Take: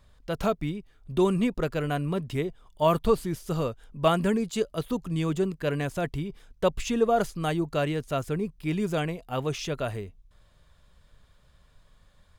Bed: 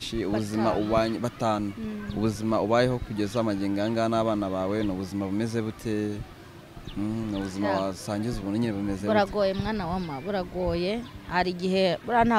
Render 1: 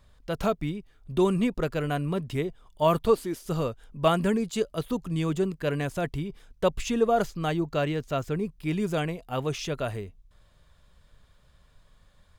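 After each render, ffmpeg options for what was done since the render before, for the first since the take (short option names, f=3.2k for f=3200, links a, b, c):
-filter_complex "[0:a]asettb=1/sr,asplit=3[a][b][c];[a]atrim=end=3.054[d];[b]atrim=start=3.05:end=3.46,asetpts=PTS-STARTPTS,afade=t=in:d=0.004:c=qsin,afade=t=out:st=0.406:d=0.004:c=qsin,lowshelf=f=200:t=q:w=1.5:g=-9[e];[c]atrim=start=3.456[f];[d][e]acrossfade=d=0.004:c1=hsin:c2=qsin[g];[g][f]acrossfade=d=0.004:c1=qsin:c2=hsin,asettb=1/sr,asplit=3[h][i][j];[h]atrim=end=7.244[k];[i]atrim=start=7.24:end=8.35,asetpts=PTS-STARTPTS,afade=t=in:d=0.004:c=qsin,afade=t=out:st=1.106:d=0.004:c=qsin,equalizer=f=10k:t=o:w=0.4:g=-12[l];[j]atrim=start=8.346[m];[k][l]acrossfade=d=0.004:c1=hsin:c2=qsin[n];[n][m]acrossfade=d=0.004:c1=qsin:c2=hsin"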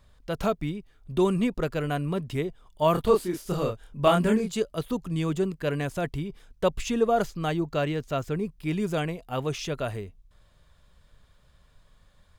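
-filter_complex "[0:a]asettb=1/sr,asplit=3[a][b][c];[a]atrim=end=2.924[d];[b]atrim=start=2.92:end=4.53,asetpts=PTS-STARTPTS,afade=t=in:d=0.004:c=qsin,afade=t=out:st=1.606:d=0.004:c=qsin,asplit=2[e][f];[f]adelay=28,volume=-3dB[g];[e][g]amix=inputs=2:normalize=0,atrim=end_sample=71001[h];[c]atrim=start=4.526[i];[d][h]acrossfade=d=0.004:c1=hsin:c2=qsin[j];[j][i]acrossfade=d=0.004:c1=qsin:c2=hsin"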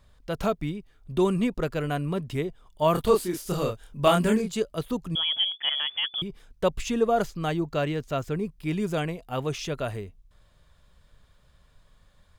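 -filter_complex "[0:a]asettb=1/sr,asplit=3[a][b][c];[a]atrim=end=2.954[d];[b]atrim=start=2.95:end=4.42,asetpts=PTS-STARTPTS,afade=t=in:d=0.004:c=qsin,afade=t=out:st=1.466:d=0.004:c=qsin,highshelf=f=3.5k:g=6[e];[c]atrim=start=4.416[f];[d][e]acrossfade=d=0.004:c1=hsin:c2=qsin[g];[g][f]acrossfade=d=0.004:c1=qsin:c2=hsin,asettb=1/sr,asplit=3[h][i][j];[h]atrim=end=5.154[k];[i]atrim=start=5.15:end=6.22,asetpts=PTS-STARTPTS,afade=t=in:d=0.004:c=qsin,afade=t=out:st=1.066:d=0.004:c=qsin,lowpass=f=3k:t=q:w=0.5098,lowpass=f=3k:t=q:w=0.6013,lowpass=f=3k:t=q:w=0.9,lowpass=f=3k:t=q:w=2.563,afreqshift=-3500[l];[j]atrim=start=6.216[m];[k][l]acrossfade=d=0.004:c1=hsin:c2=qsin[n];[n][m]acrossfade=d=0.004:c1=qsin:c2=hsin"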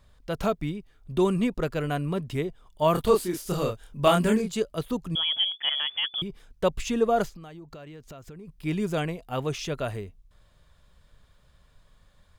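-filter_complex "[0:a]asplit=3[a][b][c];[a]afade=t=out:st=7.28:d=0.02[d];[b]acompressor=threshold=-40dB:ratio=10:attack=3.2:release=140:knee=1:detection=peak,afade=t=in:st=7.28:d=0.02,afade=t=out:st=8.47:d=0.02[e];[c]afade=t=in:st=8.47:d=0.02[f];[d][e][f]amix=inputs=3:normalize=0"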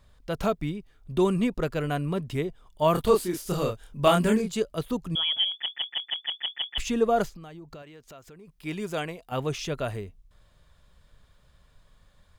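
-filter_complex "[0:a]asettb=1/sr,asplit=3[a][b][c];[a]atrim=end=7.824[d];[b]atrim=start=7.82:end=9.32,asetpts=PTS-STARTPTS,afade=t=in:d=0.004:c=qsin,afade=t=out:st=1.496:d=0.004:c=qsin,lowshelf=f=270:g=-10.5[e];[c]atrim=start=9.316[f];[d][e]acrossfade=d=0.004:c1=hsin:c2=qsin[g];[g][f]acrossfade=d=0.004:c1=qsin:c2=hsin,asplit=9[h][i][j][k][l][m][n][o][p];[h]atrim=end=5.662[q];[i]atrim=start=5.498:end=5.662[r];[j]atrim=start=5.498:end=5.662[s];[k]atrim=start=5.498:end=5.662[t];[l]atrim=start=5.498:end=5.662[u];[m]atrim=start=5.498:end=5.662[v];[n]atrim=start=5.498:end=5.662[w];[o]atrim=start=5.498:end=5.662[x];[p]atrim=start=6.778[y];[q][r]acrossfade=d=0.004:c1=hsin:c2=hsin[z];[z][s]acrossfade=d=0.004:c1=hsin:c2=hsin[aa];[aa][t]acrossfade=d=0.004:c1=hsin:c2=hsin[ab];[ab][u]acrossfade=d=0.004:c1=hsin:c2=hsin[ac];[ac][v]acrossfade=d=0.004:c1=hsin:c2=hsin[ad];[ad][w]acrossfade=d=0.004:c1=hsin:c2=hsin[ae];[ae][x]acrossfade=d=0.004:c1=hsin:c2=hsin[af];[af][y]acrossfade=d=0.004:c1=hsin:c2=hsin"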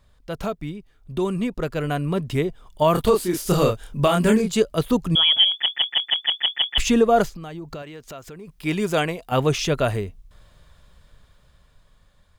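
-af "alimiter=limit=-16.5dB:level=0:latency=1:release=366,dynaudnorm=f=490:g=9:m=9.5dB"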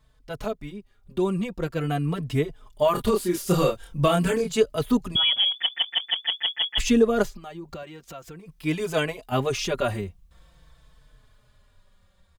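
-filter_complex "[0:a]asplit=2[a][b];[b]adelay=4.1,afreqshift=-0.46[c];[a][c]amix=inputs=2:normalize=1"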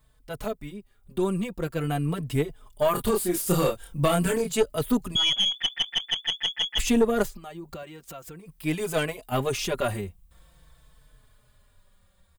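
-af "aexciter=amount=2.8:drive=4.4:freq=7.9k,aeval=exprs='(tanh(3.98*val(0)+0.4)-tanh(0.4))/3.98':c=same"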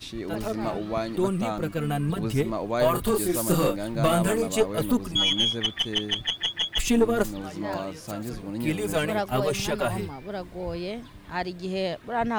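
-filter_complex "[1:a]volume=-5dB[a];[0:a][a]amix=inputs=2:normalize=0"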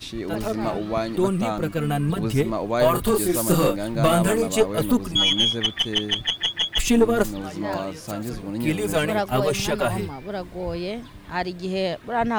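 -af "volume=3.5dB"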